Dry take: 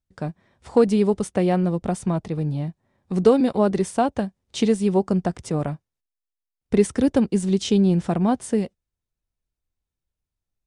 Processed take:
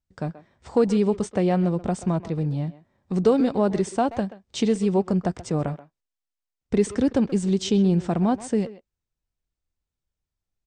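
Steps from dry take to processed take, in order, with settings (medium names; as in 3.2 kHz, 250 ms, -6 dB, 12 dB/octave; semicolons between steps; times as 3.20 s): Chebyshev low-pass 8.5 kHz, order 5; in parallel at -1 dB: peak limiter -14.5 dBFS, peak gain reduction 9 dB; on the sum: speakerphone echo 130 ms, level -14 dB; trim -6 dB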